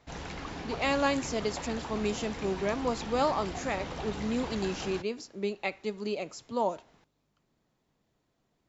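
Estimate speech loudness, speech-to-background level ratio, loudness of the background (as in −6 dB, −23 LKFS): −32.5 LKFS, 7.0 dB, −39.5 LKFS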